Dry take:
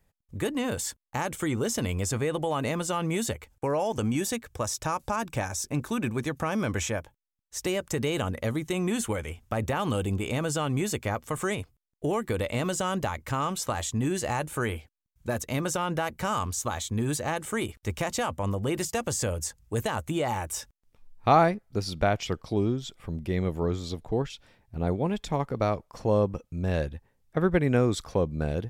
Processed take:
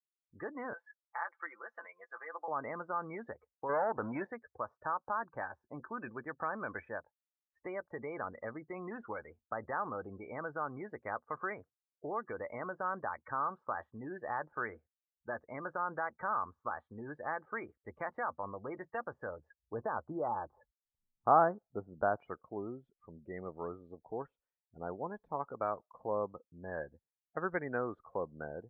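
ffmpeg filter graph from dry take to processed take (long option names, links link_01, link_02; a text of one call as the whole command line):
ffmpeg -i in.wav -filter_complex "[0:a]asettb=1/sr,asplit=3[link_01][link_02][link_03];[link_01]atrim=end=0.734[link_04];[link_02]atrim=start=0.73:end=2.48,asetpts=PTS-STARTPTS,afade=type=in:duration=0.004:curve=qsin,afade=type=out:start_time=1.746:duration=0.004:curve=qsin,highpass=920,aecho=1:1:5.9:0.55,atrim=end_sample=77175[link_05];[link_03]atrim=start=2.476[link_06];[link_04][link_05]acrossfade=duration=0.004:curve1=hsin:curve2=qsin[link_07];[link_07][link_06]acrossfade=duration=0.004:curve1=qsin:curve2=hsin,asettb=1/sr,asplit=3[link_08][link_09][link_10];[link_08]atrim=end=3.694[link_11];[link_09]atrim=start=3.69:end=4.27,asetpts=PTS-STARTPTS,afade=type=in:duration=0.004:curve=qsin,afade=type=out:start_time=0.576:duration=0.004:curve=qsin,acontrast=46,aeval=exprs='clip(val(0),-1,0.0944)':channel_layout=same[link_12];[link_10]atrim=start=4.266[link_13];[link_11][link_12]acrossfade=duration=0.004:curve1=hsin:curve2=qsin[link_14];[link_14][link_13]acrossfade=duration=0.004:curve1=qsin:curve2=hsin,asettb=1/sr,asplit=3[link_15][link_16][link_17];[link_15]atrim=end=19.634[link_18];[link_16]atrim=start=19.63:end=22.2,asetpts=PTS-STARTPTS,afade=type=in:duration=0.004:curve=qsin,afade=type=out:start_time=2.566:duration=0.004:curve=qsin,lowpass=frequency=1700:width=0.5412,lowpass=frequency=1700:width=1.3066,tiltshelf=frequency=1200:gain=5[link_19];[link_17]atrim=start=22.196[link_20];[link_18][link_19]acrossfade=duration=0.004:curve1=hsin:curve2=qsin[link_21];[link_21][link_20]acrossfade=duration=0.004:curve1=qsin:curve2=hsin,lowpass=frequency=1600:width=0.5412,lowpass=frequency=1600:width=1.3066,afftdn=noise_reduction=33:noise_floor=-41,aderivative,volume=12dB" out.wav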